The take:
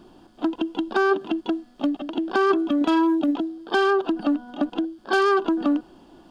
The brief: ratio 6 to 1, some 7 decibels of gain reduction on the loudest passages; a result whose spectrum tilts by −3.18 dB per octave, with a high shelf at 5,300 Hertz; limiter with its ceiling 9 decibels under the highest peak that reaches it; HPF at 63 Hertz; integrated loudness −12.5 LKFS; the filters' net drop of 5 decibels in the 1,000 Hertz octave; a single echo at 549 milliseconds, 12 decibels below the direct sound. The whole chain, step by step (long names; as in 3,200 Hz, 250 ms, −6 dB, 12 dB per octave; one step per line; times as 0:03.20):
high-pass filter 63 Hz
parametric band 1,000 Hz −6 dB
high-shelf EQ 5,300 Hz −8.5 dB
downward compressor 6 to 1, threshold −25 dBFS
brickwall limiter −23.5 dBFS
single-tap delay 549 ms −12 dB
level +20 dB